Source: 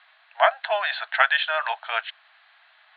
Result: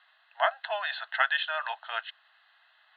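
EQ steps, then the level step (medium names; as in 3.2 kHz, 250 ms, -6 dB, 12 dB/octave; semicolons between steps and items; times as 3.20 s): Butterworth band-stop 2.3 kHz, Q 6.3; bass shelf 430 Hz -9.5 dB; -5.5 dB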